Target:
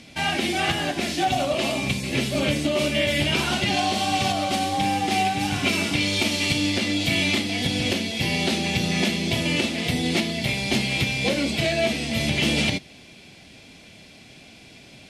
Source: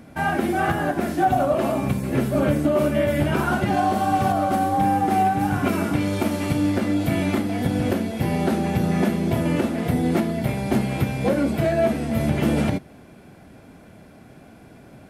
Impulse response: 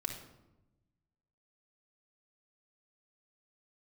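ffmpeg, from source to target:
-af "lowpass=4600,aexciter=amount=9.3:drive=5.7:freq=2200,volume=-4dB"

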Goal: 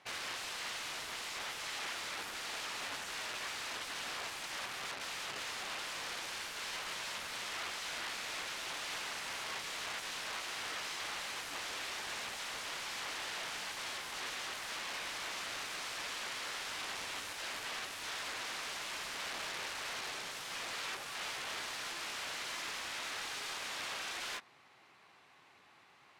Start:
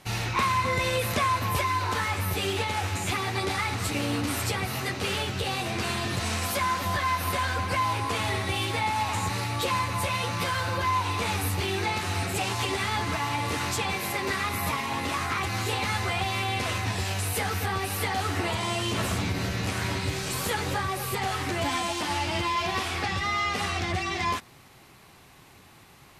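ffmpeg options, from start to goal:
ffmpeg -i in.wav -af "aeval=exprs='(mod(23.7*val(0)+1,2)-1)/23.7':channel_layout=same,aderivative,adynamicsmooth=sensitivity=1.5:basefreq=1600,volume=12.5dB" out.wav

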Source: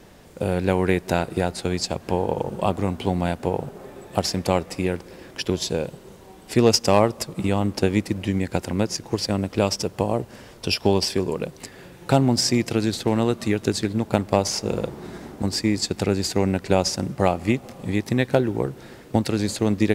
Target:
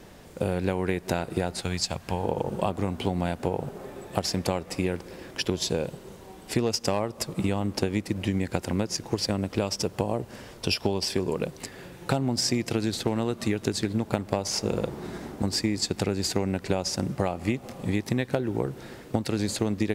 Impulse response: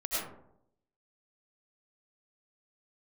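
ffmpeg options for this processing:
-filter_complex "[0:a]asettb=1/sr,asplit=3[link_01][link_02][link_03];[link_01]atrim=end=1.614[link_04];[link_02]atrim=start=1.61:end=2.24,asetpts=PTS-STARTPTS,afade=type=in:duration=0.004:curve=qsin,afade=type=out:start_time=0.626:duration=0.004:curve=qsin,equalizer=frequency=370:width=0.78:gain=-10[link_05];[link_03]atrim=start=2.236[link_06];[link_04][link_05]acrossfade=duration=0.004:curve1=hsin:curve2=qsin[link_07];[link_07][link_06]acrossfade=duration=0.004:curve1=qsin:curve2=hsin,acompressor=threshold=-21dB:ratio=10"

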